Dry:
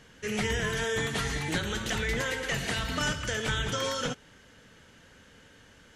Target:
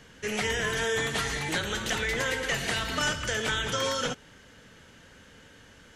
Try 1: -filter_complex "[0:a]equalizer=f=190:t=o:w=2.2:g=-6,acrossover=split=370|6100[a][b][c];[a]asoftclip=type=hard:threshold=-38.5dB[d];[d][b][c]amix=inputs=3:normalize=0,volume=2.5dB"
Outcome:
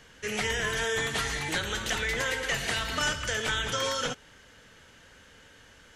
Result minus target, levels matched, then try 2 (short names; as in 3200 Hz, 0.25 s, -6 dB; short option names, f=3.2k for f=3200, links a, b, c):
250 Hz band -2.5 dB
-filter_complex "[0:a]acrossover=split=370|6100[a][b][c];[a]asoftclip=type=hard:threshold=-38.5dB[d];[d][b][c]amix=inputs=3:normalize=0,volume=2.5dB"